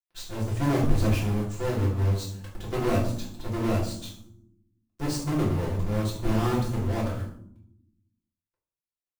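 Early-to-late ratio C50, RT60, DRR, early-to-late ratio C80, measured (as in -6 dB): 6.5 dB, 0.70 s, -5.5 dB, 10.0 dB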